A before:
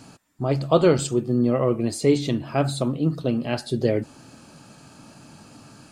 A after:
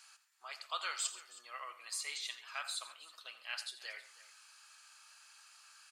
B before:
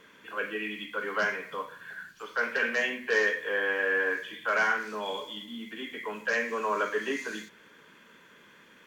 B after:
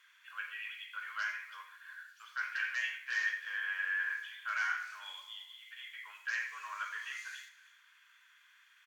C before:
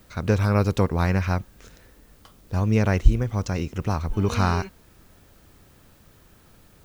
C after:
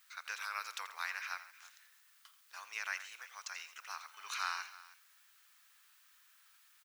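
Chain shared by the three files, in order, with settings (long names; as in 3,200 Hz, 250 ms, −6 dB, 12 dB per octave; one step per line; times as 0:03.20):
high-pass filter 1,300 Hz 24 dB per octave
on a send: multi-tap delay 85/136/319 ms −14/−19.5/−18.5 dB
on the sum: level −6.5 dB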